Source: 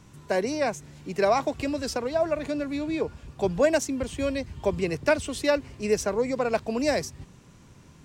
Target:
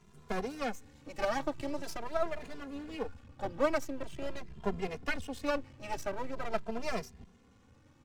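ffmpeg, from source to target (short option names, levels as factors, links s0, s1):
-filter_complex "[0:a]asetnsamples=n=441:p=0,asendcmd='3.2 highshelf g -10.5',highshelf=f=5200:g=-3.5,aeval=exprs='max(val(0),0)':c=same,asplit=2[s0][s1];[s1]adelay=2.5,afreqshift=0.44[s2];[s0][s2]amix=inputs=2:normalize=1,volume=0.794"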